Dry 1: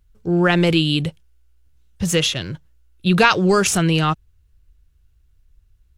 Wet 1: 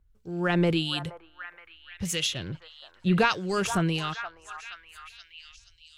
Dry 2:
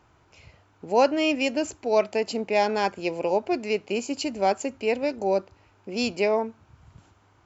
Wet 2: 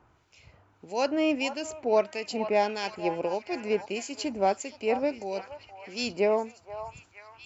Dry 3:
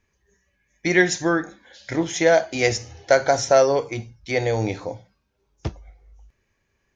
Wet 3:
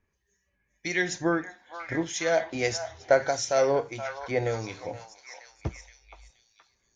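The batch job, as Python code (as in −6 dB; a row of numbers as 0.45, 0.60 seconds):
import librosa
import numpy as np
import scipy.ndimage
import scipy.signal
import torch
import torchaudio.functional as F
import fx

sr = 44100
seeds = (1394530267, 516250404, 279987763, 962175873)

y = fx.harmonic_tremolo(x, sr, hz=1.6, depth_pct=70, crossover_hz=2000.0)
y = fx.echo_stepped(y, sr, ms=473, hz=990.0, octaves=0.7, feedback_pct=70, wet_db=-6.5)
y = y * 10.0 ** (-30 / 20.0) / np.sqrt(np.mean(np.square(y)))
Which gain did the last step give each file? −6.0, −0.5, −4.0 decibels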